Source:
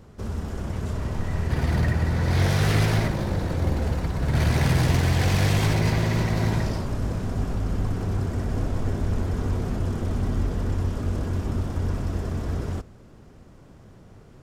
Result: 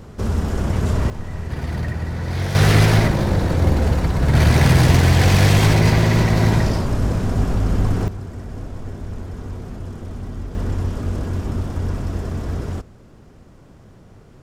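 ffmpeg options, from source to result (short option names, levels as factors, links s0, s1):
-af "asetnsamples=n=441:p=0,asendcmd='1.1 volume volume -2dB;2.55 volume volume 7.5dB;8.08 volume volume -5dB;10.55 volume volume 3dB',volume=2.99"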